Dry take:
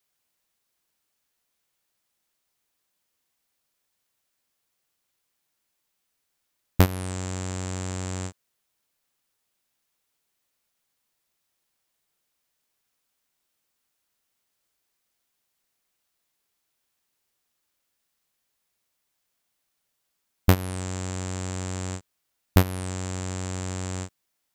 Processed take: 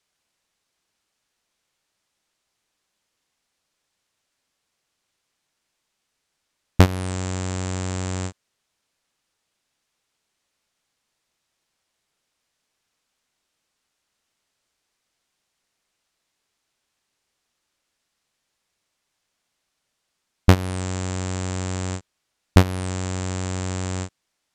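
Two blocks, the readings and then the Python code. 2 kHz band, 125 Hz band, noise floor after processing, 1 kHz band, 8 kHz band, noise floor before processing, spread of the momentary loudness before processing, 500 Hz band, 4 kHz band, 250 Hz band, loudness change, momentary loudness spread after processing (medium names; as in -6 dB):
+4.5 dB, +4.5 dB, -78 dBFS, +4.5 dB, +2.0 dB, -78 dBFS, 12 LU, +4.5 dB, +4.5 dB, +4.5 dB, +4.0 dB, 12 LU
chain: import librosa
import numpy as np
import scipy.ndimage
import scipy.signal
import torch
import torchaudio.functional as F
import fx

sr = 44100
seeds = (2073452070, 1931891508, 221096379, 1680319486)

y = scipy.signal.sosfilt(scipy.signal.butter(2, 7900.0, 'lowpass', fs=sr, output='sos'), x)
y = y * 10.0 ** (4.5 / 20.0)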